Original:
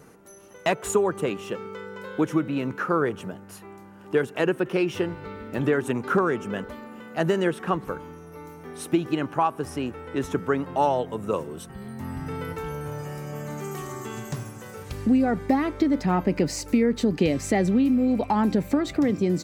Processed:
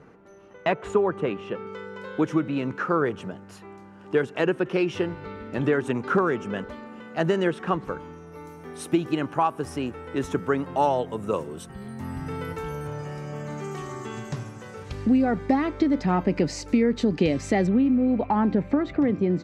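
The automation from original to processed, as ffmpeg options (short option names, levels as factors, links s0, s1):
-af "asetnsamples=n=441:p=0,asendcmd='1.67 lowpass f 6400;8.35 lowpass f 11000;12.87 lowpass f 5900;17.67 lowpass f 2300',lowpass=2800"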